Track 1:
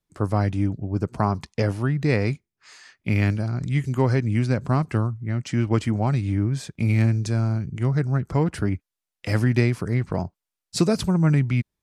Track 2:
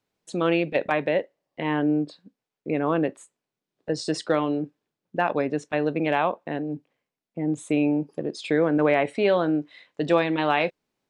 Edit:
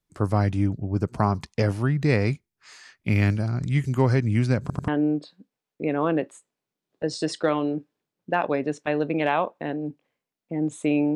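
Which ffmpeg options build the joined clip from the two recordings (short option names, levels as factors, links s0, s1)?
-filter_complex "[0:a]apad=whole_dur=11.15,atrim=end=11.15,asplit=3[s0][s1][s2];[s0]atrim=end=4.702[s3];[s1]atrim=start=4.608:end=4.702[s4];[s2]atrim=start=4.608:end=4.702[s5];[1:a]atrim=start=1.738:end=8.01[s6];[s3][s4]acrossfade=d=0.004:c1=hsin:c2=hsin[s7];[s7][s5]acrossfade=d=0.004:c1=hsin:c2=hsin[s8];[s8][s6]acrossfade=d=0.004:c1=hsin:c2=hsin"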